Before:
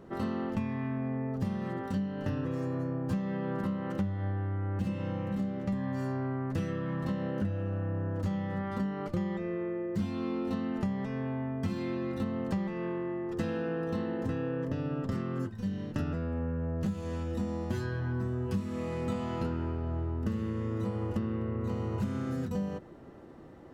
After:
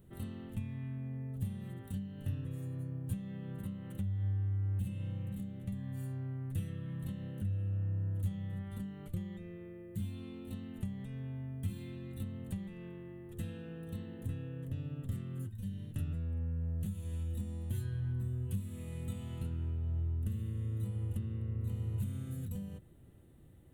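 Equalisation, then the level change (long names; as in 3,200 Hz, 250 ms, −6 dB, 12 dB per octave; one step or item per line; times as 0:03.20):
drawn EQ curve 110 Hz 0 dB, 240 Hz −13 dB, 1,100 Hz −22 dB, 3,600 Hz −5 dB, 5,100 Hz −21 dB, 9,300 Hz +8 dB
0.0 dB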